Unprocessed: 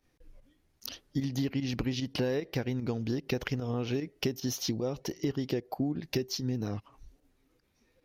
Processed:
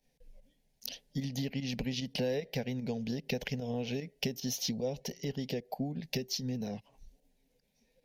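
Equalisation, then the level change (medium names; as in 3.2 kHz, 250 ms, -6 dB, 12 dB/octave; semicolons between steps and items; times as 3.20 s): dynamic bell 2.1 kHz, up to +3 dB, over -52 dBFS, Q 0.92; static phaser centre 330 Hz, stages 6; 0.0 dB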